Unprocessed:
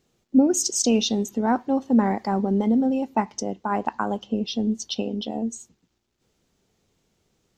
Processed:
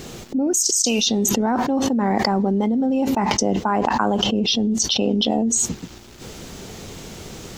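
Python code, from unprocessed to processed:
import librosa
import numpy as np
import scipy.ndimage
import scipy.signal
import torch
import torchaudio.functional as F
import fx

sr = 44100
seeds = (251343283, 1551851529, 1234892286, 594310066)

y = fx.pre_emphasis(x, sr, coefficient=0.9, at=(0.53, 1.07))
y = fx.env_flatten(y, sr, amount_pct=100)
y = F.gain(torch.from_numpy(y), -7.0).numpy()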